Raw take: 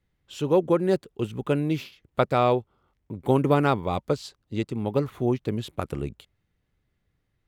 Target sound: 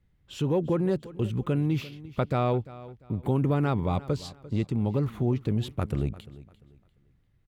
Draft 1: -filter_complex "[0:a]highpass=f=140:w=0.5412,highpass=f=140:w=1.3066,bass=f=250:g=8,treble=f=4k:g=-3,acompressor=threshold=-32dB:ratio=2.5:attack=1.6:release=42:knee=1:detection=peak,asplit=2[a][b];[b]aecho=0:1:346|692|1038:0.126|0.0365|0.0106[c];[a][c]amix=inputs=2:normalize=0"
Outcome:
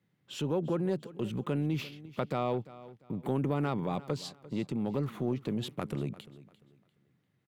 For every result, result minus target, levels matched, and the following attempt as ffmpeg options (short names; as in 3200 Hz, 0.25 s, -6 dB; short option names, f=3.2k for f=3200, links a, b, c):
compressor: peak gain reduction +5 dB; 125 Hz band -2.5 dB
-filter_complex "[0:a]highpass=f=140:w=0.5412,highpass=f=140:w=1.3066,bass=f=250:g=8,treble=f=4k:g=-3,acompressor=threshold=-23.5dB:ratio=2.5:attack=1.6:release=42:knee=1:detection=peak,asplit=2[a][b];[b]aecho=0:1:346|692|1038:0.126|0.0365|0.0106[c];[a][c]amix=inputs=2:normalize=0"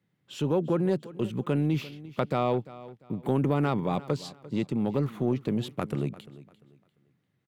125 Hz band -2.5 dB
-filter_complex "[0:a]bass=f=250:g=8,treble=f=4k:g=-3,acompressor=threshold=-23.5dB:ratio=2.5:attack=1.6:release=42:knee=1:detection=peak,asplit=2[a][b];[b]aecho=0:1:346|692|1038:0.126|0.0365|0.0106[c];[a][c]amix=inputs=2:normalize=0"